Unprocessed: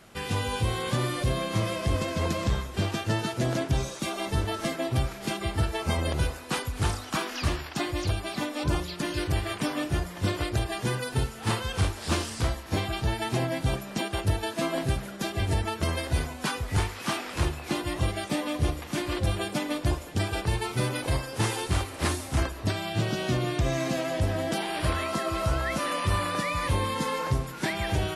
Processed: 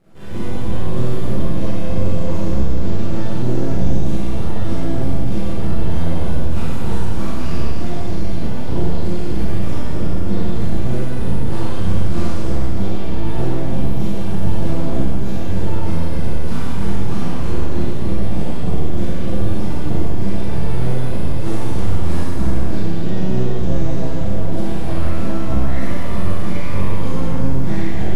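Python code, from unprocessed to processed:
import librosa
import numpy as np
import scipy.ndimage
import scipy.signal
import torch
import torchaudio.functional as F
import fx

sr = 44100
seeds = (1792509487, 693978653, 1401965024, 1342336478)

y = fx.spec_trails(x, sr, decay_s=2.77)
y = np.maximum(y, 0.0)
y = fx.tilt_shelf(y, sr, db=8.5, hz=830.0)
y = fx.rev_schroeder(y, sr, rt60_s=0.78, comb_ms=33, drr_db=-8.0)
y = y * 10.0 ** (-8.0 / 20.0)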